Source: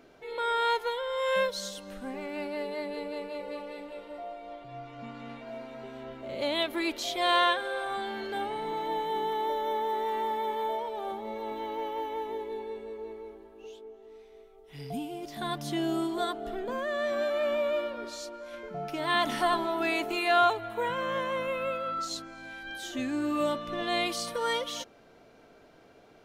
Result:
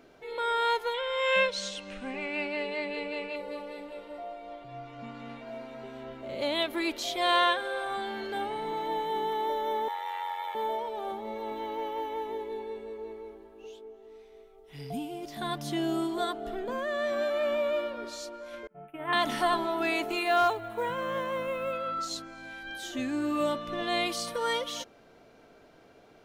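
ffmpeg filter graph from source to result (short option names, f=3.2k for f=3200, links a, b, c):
-filter_complex "[0:a]asettb=1/sr,asplit=3[a][b][c];[a]atrim=end=0.944[d];[b]atrim=start=0.94:end=3.36,asetpts=PTS-STARTPTS,afade=t=in:d=0.004:c=qsin,afade=t=out:st=2.416:d=0.004:c=qsin,lowpass=f=8.5k:w=0.5412,lowpass=f=8.5k:w=1.3066,equalizer=f=2.5k:w=2.1:g=12.5[e];[c]atrim=start=3.356[f];[d][e]acrossfade=d=0.004:c1=hsin:c2=qsin[g];[g][f]acrossfade=d=0.004:c1=qsin:c2=hsin,asettb=1/sr,asplit=3[h][i][j];[h]atrim=end=9.884[k];[i]atrim=start=9.88:end=10.55,asetpts=PTS-STARTPTS,afade=t=in:d=0.004:c=qsin,afade=t=out:st=0.666:d=0.004:c=qsin,aeval=exprs='val(0)*sin(2*PI*45*n/s)':c=same,highpass=f=720:w=0.5412,highpass=f=720:w=1.3066,equalizer=f=2.3k:t=o:w=1.2:g=5.5[l];[j]atrim=start=10.546[m];[k][l]acrossfade=d=0.004:c1=hsin:c2=qsin[n];[n][m]acrossfade=d=0.004:c1=qsin:c2=hsin,asettb=1/sr,asplit=3[o][p][q];[o]atrim=end=18.674[r];[p]atrim=start=18.67:end=19.13,asetpts=PTS-STARTPTS,afade=t=in:d=0.004:c=qsin,afade=t=out:st=0.456:d=0.004:c=qsin,agate=range=-33dB:threshold=-28dB:ratio=3:release=100:detection=peak,acrossover=split=2700[s][t];[t]acompressor=threshold=-45dB:ratio=4:attack=1:release=60[u];[s][u]amix=inputs=2:normalize=0,asuperstop=centerf=5400:order=8:qfactor=0.84[v];[q]atrim=start=19.126[w];[r][v]acrossfade=d=0.004:c1=hsin:c2=qsin[x];[x][w]acrossfade=d=0.004:c1=qsin:c2=hsin,asettb=1/sr,asplit=3[y][z][aa];[y]atrim=end=20.234[ab];[z]atrim=start=20.23:end=21.73,asetpts=PTS-STARTPTS,afade=t=in:d=0.004:c=qsin,afade=t=out:st=1.496:d=0.004:c=qsin,acrusher=bits=8:mode=log:mix=0:aa=0.000001,equalizer=f=3.5k:w=0.4:g=-3.5,asoftclip=type=hard:threshold=-17dB[ac];[aa]atrim=start=21.726[ad];[ab][ac]acrossfade=d=0.004:c1=hsin:c2=qsin[ae];[ae][ad]acrossfade=d=0.004:c1=qsin:c2=hsin"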